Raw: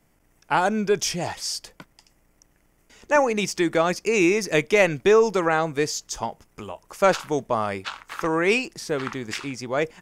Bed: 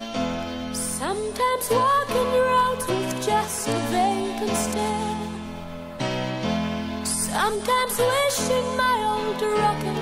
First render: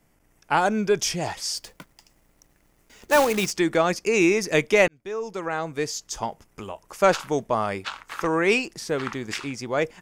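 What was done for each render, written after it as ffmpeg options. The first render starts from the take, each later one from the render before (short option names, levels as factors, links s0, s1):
-filter_complex "[0:a]asettb=1/sr,asplit=3[s0][s1][s2];[s0]atrim=end=1.574[s3];[s1]atrim=start=1.57:end=3.51,asetpts=PTS-STARTPTS,afade=t=in:d=0.004:c=qsin,afade=t=out:st=1.936:d=0.004:c=qsin,acrusher=bits=2:mode=log:mix=0:aa=0.000001[s4];[s2]atrim=start=3.506[s5];[s3][s4]acrossfade=d=0.004:c1=hsin:c2=qsin[s6];[s6][s5]acrossfade=d=0.004:c1=qsin:c2=hsin,asplit=2[s7][s8];[s7]atrim=end=4.88,asetpts=PTS-STARTPTS,afade=t=out:st=4.876:d=0.004:c=hsin[s9];[s8]atrim=start=4.88,asetpts=PTS-STARTPTS,afade=t=in:d=1.41[s10];[s9][s10]concat=n=2:v=0:a=1"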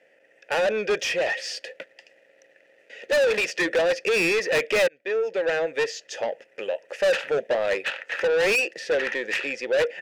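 -filter_complex "[0:a]asplit=3[s0][s1][s2];[s0]bandpass=f=530:t=q:w=8,volume=1[s3];[s1]bandpass=f=1840:t=q:w=8,volume=0.501[s4];[s2]bandpass=f=2480:t=q:w=8,volume=0.355[s5];[s3][s4][s5]amix=inputs=3:normalize=0,asplit=2[s6][s7];[s7]highpass=f=720:p=1,volume=28.2,asoftclip=type=tanh:threshold=0.2[s8];[s6][s8]amix=inputs=2:normalize=0,lowpass=f=5500:p=1,volume=0.501"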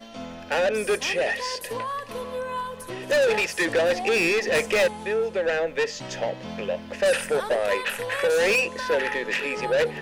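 -filter_complex "[1:a]volume=0.282[s0];[0:a][s0]amix=inputs=2:normalize=0"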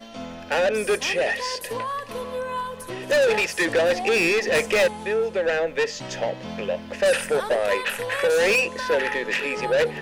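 -af "volume=1.19"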